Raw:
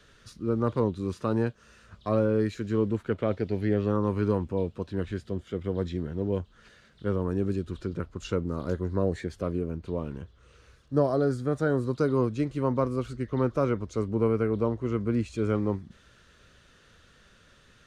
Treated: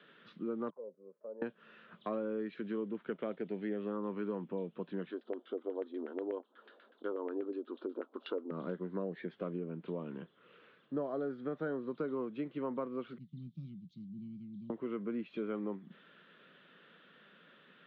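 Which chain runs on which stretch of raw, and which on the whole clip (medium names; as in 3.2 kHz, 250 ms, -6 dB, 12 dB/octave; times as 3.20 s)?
0.70–1.42 s: low-pass 1.7 kHz + comb 4.7 ms, depth 41% + auto-wah 530–1100 Hz, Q 21, down, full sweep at -28 dBFS
5.09–8.51 s: resonant high shelf 3 kHz +14 dB, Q 3 + LFO low-pass saw down 8.2 Hz 590–1900 Hz + brick-wall FIR high-pass 230 Hz
13.18–14.70 s: elliptic band-stop 160–4400 Hz, stop band 50 dB + tape noise reduction on one side only decoder only
whole clip: Chebyshev band-pass 170–3400 Hz, order 4; compression 3:1, threshold -36 dBFS; trim -1 dB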